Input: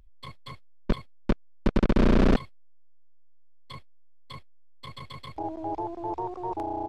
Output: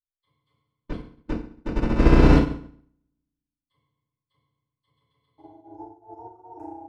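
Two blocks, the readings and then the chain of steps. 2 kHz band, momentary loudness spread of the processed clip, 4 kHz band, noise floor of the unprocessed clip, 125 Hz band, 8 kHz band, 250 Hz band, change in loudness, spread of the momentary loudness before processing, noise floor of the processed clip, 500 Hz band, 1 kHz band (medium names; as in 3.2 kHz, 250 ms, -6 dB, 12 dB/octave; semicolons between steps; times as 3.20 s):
+4.0 dB, 22 LU, 0.0 dB, -48 dBFS, +6.5 dB, no reading, +3.0 dB, +7.0 dB, 24 LU, under -85 dBFS, +2.5 dB, -1.0 dB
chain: spectral noise reduction 18 dB; FDN reverb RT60 1.2 s, low-frequency decay 1.35×, high-frequency decay 0.8×, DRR -7 dB; upward expansion 2.5:1, over -34 dBFS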